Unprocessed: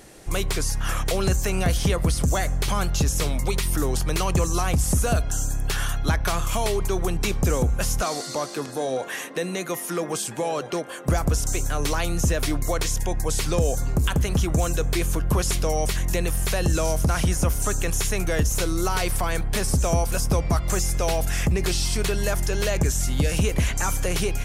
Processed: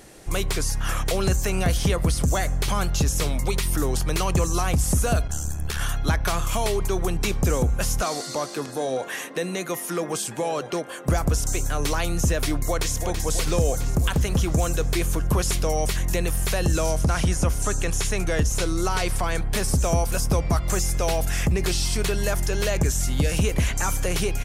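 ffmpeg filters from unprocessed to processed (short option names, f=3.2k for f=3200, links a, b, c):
-filter_complex "[0:a]asplit=3[a][b][c];[a]afade=t=out:st=5.27:d=0.02[d];[b]aeval=exprs='val(0)*sin(2*PI*38*n/s)':c=same,afade=t=in:st=5.27:d=0.02,afade=t=out:st=5.79:d=0.02[e];[c]afade=t=in:st=5.79:d=0.02[f];[d][e][f]amix=inputs=3:normalize=0,asplit=2[g][h];[h]afade=t=in:st=12.56:d=0.01,afade=t=out:st=12.97:d=0.01,aecho=0:1:330|660|990|1320|1650|1980|2310|2640|2970|3300|3630:0.446684|0.312679|0.218875|0.153212|0.107249|0.0750741|0.0525519|0.0367863|0.0257504|0.0180253|0.0126177[i];[g][i]amix=inputs=2:normalize=0,asettb=1/sr,asplit=3[j][k][l];[j]atrim=end=16.904[m];[k]atrim=start=16.9:end=19.43,asetpts=PTS-STARTPTS,afade=t=in:d=0.004:c=qsin,afade=t=out:st=2.526:d=0.004:c=qsin,lowpass=10k[n];[l]atrim=start=19.426[o];[m][n]acrossfade=d=0.004:c1=hsin:c2=qsin[p];[p][o]acrossfade=d=0.004:c1=qsin:c2=hsin"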